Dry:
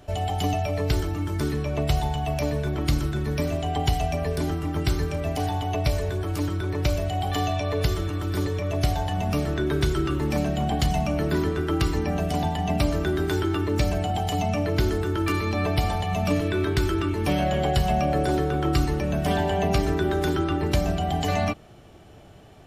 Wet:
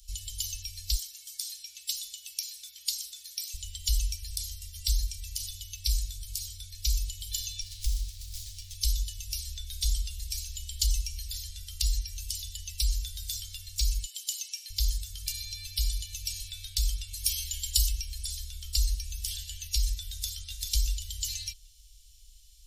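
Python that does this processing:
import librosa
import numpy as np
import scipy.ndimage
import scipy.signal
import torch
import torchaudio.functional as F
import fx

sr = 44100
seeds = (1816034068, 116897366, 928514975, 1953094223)

y = fx.highpass(x, sr, hz=650.0, slope=12, at=(0.94, 3.54))
y = fx.running_max(y, sr, window=9, at=(7.61, 8.75))
y = fx.steep_highpass(y, sr, hz=590.0, slope=36, at=(14.04, 14.7))
y = fx.high_shelf(y, sr, hz=5200.0, db=9.0, at=(17.13, 17.89))
y = fx.echo_throw(y, sr, start_s=20.09, length_s=0.48, ms=390, feedback_pct=25, wet_db=-2.0)
y = scipy.signal.sosfilt(scipy.signal.cheby2(4, 80, [200.0, 950.0], 'bandstop', fs=sr, output='sos'), y)
y = y * 10.0 ** (7.5 / 20.0)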